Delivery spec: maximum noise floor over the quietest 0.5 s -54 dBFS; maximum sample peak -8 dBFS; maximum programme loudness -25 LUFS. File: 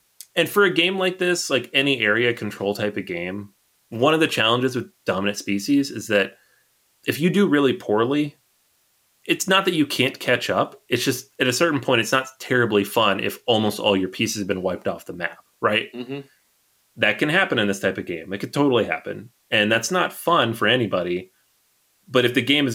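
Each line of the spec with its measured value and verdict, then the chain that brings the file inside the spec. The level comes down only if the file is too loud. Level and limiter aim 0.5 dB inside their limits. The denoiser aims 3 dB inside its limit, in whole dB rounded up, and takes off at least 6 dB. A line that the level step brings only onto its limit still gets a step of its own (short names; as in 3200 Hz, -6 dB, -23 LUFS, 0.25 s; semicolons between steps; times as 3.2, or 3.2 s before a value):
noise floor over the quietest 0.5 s -64 dBFS: OK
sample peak -5.0 dBFS: fail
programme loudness -21.0 LUFS: fail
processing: gain -4.5 dB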